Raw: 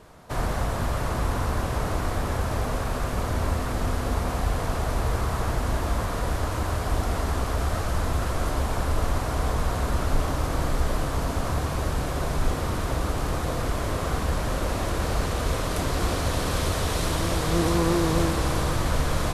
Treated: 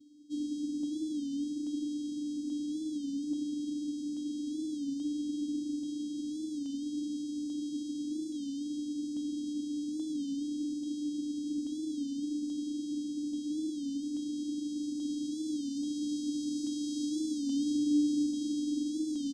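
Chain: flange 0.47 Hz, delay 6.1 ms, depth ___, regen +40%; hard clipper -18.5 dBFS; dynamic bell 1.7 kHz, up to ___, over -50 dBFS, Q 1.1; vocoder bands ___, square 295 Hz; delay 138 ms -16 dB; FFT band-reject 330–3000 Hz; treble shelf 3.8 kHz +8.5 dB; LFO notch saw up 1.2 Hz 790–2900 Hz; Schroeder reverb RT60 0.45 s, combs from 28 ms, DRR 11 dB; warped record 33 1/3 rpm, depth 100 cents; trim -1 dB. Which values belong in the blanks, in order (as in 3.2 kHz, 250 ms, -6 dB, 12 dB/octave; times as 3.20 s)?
2.8 ms, +7 dB, 4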